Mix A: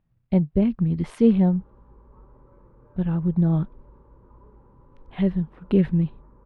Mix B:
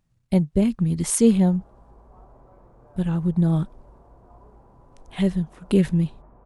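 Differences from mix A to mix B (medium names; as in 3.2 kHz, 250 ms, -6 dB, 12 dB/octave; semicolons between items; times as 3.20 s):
background: remove Butterworth band-stop 700 Hz, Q 2.6; master: remove distance through air 390 m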